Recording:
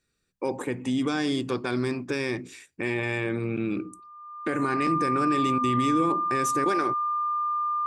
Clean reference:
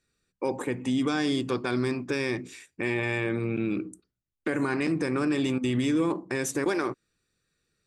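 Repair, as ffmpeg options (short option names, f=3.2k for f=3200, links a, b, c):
-af "bandreject=f=1.2k:w=30"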